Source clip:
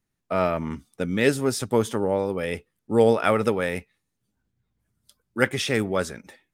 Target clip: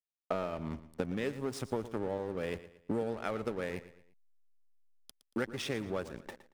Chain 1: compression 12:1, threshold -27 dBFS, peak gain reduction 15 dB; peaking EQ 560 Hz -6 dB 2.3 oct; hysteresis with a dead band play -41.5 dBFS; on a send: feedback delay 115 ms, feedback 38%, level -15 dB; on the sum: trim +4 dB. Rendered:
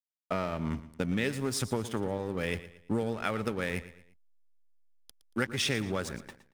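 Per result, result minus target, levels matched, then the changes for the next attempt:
compression: peak gain reduction -9 dB; 500 Hz band -3.0 dB
change: compression 12:1, threshold -37 dBFS, peak gain reduction 24 dB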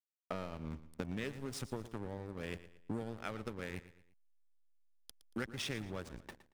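500 Hz band -3.5 dB
change: peaking EQ 560 Hz +2.5 dB 2.3 oct

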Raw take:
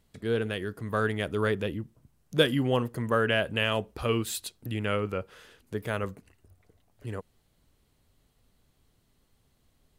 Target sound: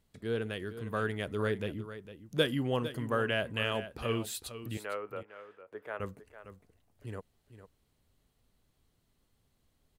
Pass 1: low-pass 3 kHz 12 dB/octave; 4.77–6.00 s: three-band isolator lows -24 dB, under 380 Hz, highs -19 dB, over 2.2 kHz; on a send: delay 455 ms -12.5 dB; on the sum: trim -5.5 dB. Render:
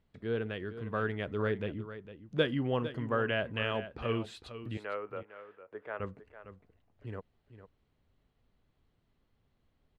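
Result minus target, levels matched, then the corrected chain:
4 kHz band -3.0 dB
4.77–6.00 s: three-band isolator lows -24 dB, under 380 Hz, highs -19 dB, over 2.2 kHz; on a send: delay 455 ms -12.5 dB; on the sum: trim -5.5 dB

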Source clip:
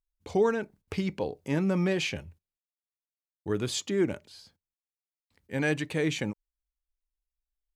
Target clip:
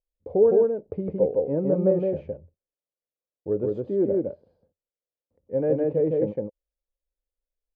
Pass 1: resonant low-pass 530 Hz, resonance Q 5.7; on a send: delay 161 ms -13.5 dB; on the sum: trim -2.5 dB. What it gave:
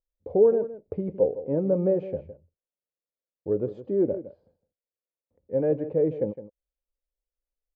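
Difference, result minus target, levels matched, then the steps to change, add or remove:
echo-to-direct -11.5 dB
change: delay 161 ms -2 dB

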